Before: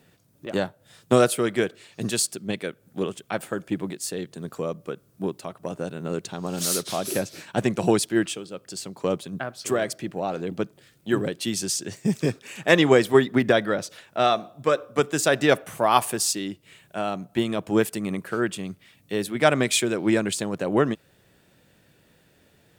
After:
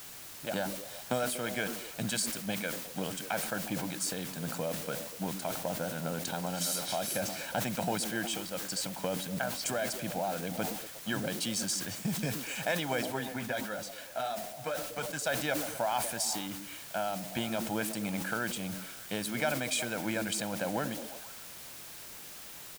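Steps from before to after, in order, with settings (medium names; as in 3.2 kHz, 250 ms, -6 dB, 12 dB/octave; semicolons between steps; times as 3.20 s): bass shelf 170 Hz -10 dB; comb 1.3 ms, depth 78%; compression 4:1, threshold -32 dBFS, peak gain reduction 18 dB; added noise white -47 dBFS; 13.01–15.25 s: flange 1.5 Hz, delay 4.7 ms, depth 6.3 ms, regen -31%; repeats whose band climbs or falls 120 ms, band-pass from 250 Hz, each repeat 0.7 oct, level -7.5 dB; decay stretcher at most 52 dB/s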